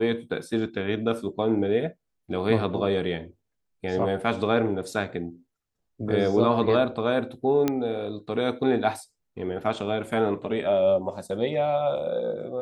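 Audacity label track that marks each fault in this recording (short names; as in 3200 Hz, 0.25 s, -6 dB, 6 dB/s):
7.680000	7.680000	pop -10 dBFS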